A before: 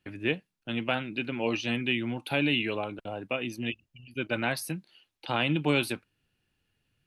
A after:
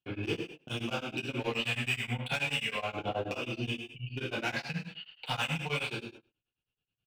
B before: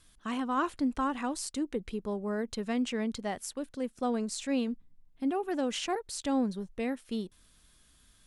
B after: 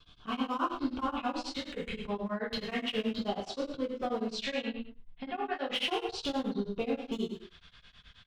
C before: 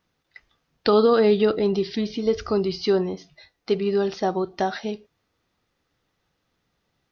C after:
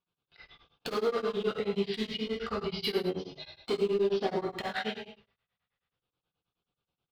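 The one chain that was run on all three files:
gate with hold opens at -57 dBFS; low-pass 3.4 kHz 24 dB/octave; treble shelf 2.1 kHz +11 dB; compression 4:1, threshold -35 dBFS; LFO notch square 0.34 Hz 330–1900 Hz; overload inside the chain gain 32 dB; echo from a far wall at 22 m, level -25 dB; gated-style reverb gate 270 ms falling, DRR -4 dB; tremolo of two beating tones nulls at 9.4 Hz; trim +4 dB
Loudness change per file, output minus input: -3.5 LU, -1.5 LU, -9.5 LU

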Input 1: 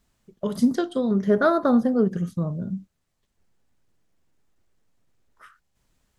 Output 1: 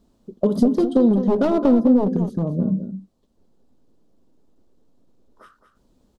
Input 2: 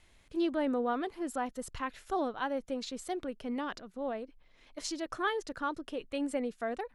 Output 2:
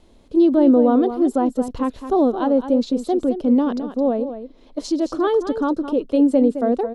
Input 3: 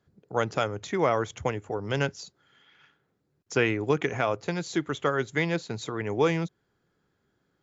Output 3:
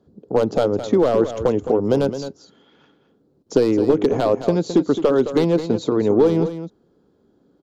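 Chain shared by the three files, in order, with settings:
one-sided wavefolder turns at -19 dBFS; tilt shelf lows +5 dB, about 780 Hz; compression 6:1, threshold -24 dBFS; graphic EQ 125/250/500/1000/2000/4000 Hz -5/+10/+7/+4/-8/+6 dB; on a send: delay 215 ms -10.5 dB; on the sum: normalise loudness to -19 LUFS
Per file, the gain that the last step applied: +2.0 dB, +6.0 dB, +4.5 dB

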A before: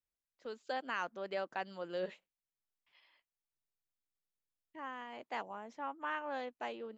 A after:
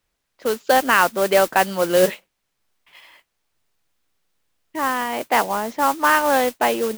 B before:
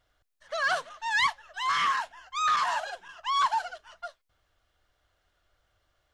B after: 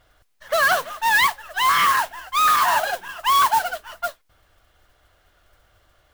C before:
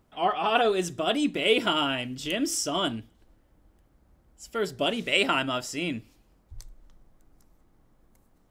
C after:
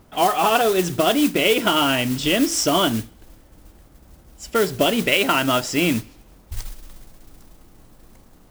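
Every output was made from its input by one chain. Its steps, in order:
treble shelf 6.2 kHz -10.5 dB; compression 6:1, threshold -28 dBFS; modulation noise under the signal 13 dB; normalise loudness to -19 LUFS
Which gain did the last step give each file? +22.5 dB, +13.5 dB, +13.5 dB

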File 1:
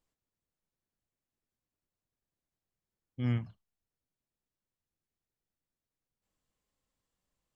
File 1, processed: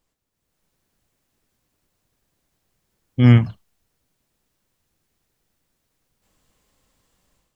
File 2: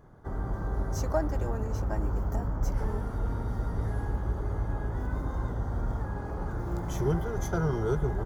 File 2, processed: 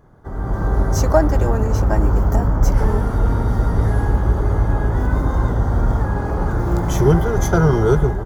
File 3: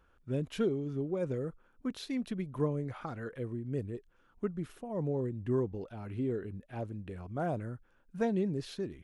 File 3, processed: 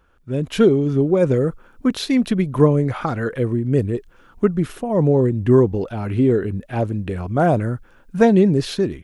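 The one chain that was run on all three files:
level rider gain up to 10 dB; peak normalisation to -1.5 dBFS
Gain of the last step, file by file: +9.0 dB, +4.0 dB, +7.5 dB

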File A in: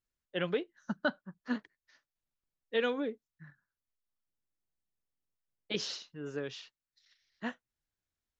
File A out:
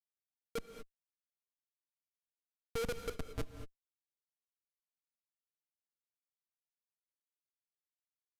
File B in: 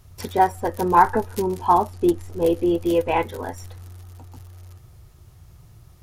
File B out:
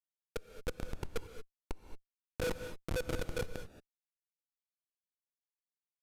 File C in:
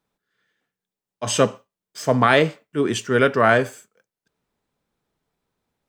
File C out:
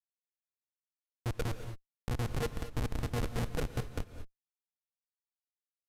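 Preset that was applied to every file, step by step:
level-controlled noise filter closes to 2.4 kHz, open at -16.5 dBFS; spectral noise reduction 22 dB; treble shelf 5.7 kHz +3.5 dB; compression 6:1, threshold -24 dBFS; peak limiter -22 dBFS; static phaser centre 500 Hz, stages 4; pitch-class resonator A#, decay 0.13 s; delay with an opening low-pass 202 ms, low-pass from 200 Hz, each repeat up 1 oct, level 0 dB; Schmitt trigger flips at -39 dBFS; gated-style reverb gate 250 ms rising, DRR 9 dB; resampled via 32 kHz; trim +15.5 dB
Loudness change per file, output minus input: -6.5 LU, -21.0 LU, -18.5 LU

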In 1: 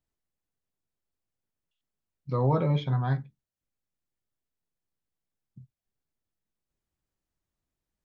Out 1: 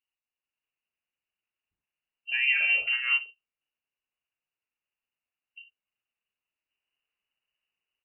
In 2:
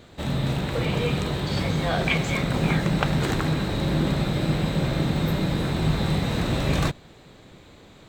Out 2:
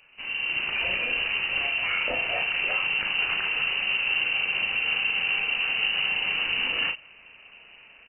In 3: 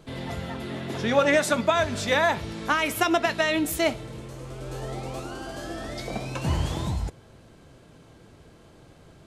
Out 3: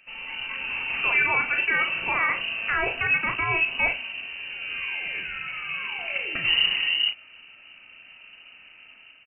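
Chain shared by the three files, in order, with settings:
high-pass 46 Hz 24 dB/octave; peak limiter -16.5 dBFS; level rider gain up to 6 dB; doubling 36 ms -6 dB; frequency inversion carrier 2.9 kHz; normalise loudness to -24 LUFS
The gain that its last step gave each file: -6.0 dB, -8.0 dB, -4.5 dB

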